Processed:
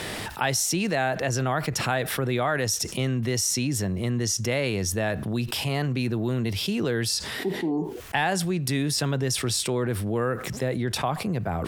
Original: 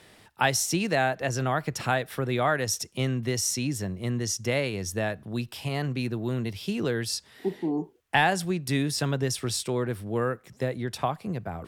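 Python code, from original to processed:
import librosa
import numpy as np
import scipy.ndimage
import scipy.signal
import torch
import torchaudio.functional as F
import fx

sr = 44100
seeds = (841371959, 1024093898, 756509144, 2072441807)

y = fx.env_flatten(x, sr, amount_pct=70)
y = y * 10.0 ** (-3.5 / 20.0)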